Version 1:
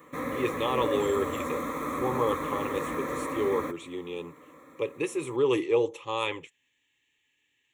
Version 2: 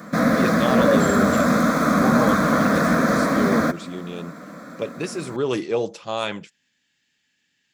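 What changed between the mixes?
background +8.0 dB; master: remove fixed phaser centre 1000 Hz, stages 8

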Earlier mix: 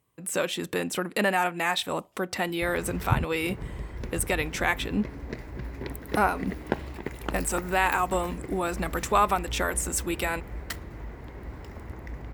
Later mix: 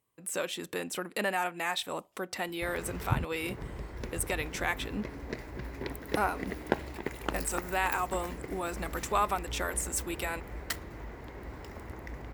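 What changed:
speech -6.0 dB; master: add tone controls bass -5 dB, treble +2 dB

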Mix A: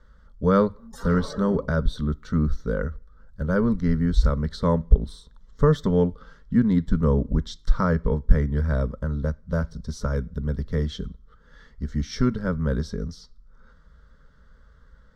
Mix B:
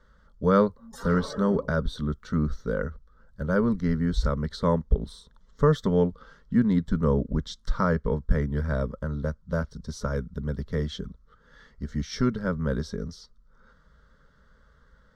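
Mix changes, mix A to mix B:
speech: send off; master: add low shelf 120 Hz -8.5 dB

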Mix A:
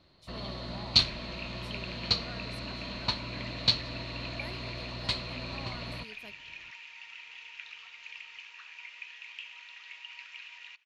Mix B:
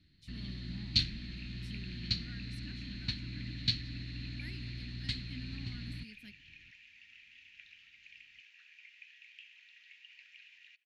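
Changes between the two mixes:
speech +4.5 dB; second sound -4.5 dB; master: add EQ curve 110 Hz 0 dB, 300 Hz -4 dB, 500 Hz -29 dB, 1100 Hz -28 dB, 1700 Hz -5 dB, 7000 Hz -8 dB, 12000 Hz -11 dB

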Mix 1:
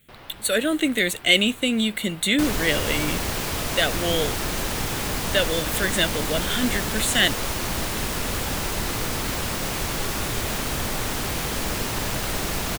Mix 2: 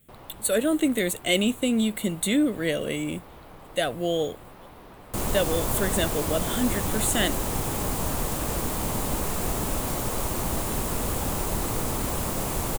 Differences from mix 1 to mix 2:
second sound: entry +2.75 s; master: add band shelf 2900 Hz -8.5 dB 2.3 oct

